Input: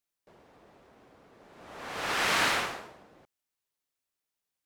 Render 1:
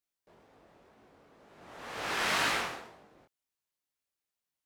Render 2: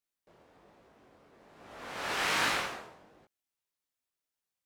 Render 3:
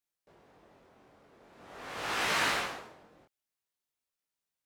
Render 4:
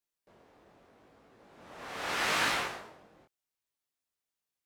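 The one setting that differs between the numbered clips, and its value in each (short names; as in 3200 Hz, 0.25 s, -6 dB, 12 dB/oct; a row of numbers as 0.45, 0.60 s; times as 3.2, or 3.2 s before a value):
chorus, rate: 2, 1.2, 0.45, 0.79 Hz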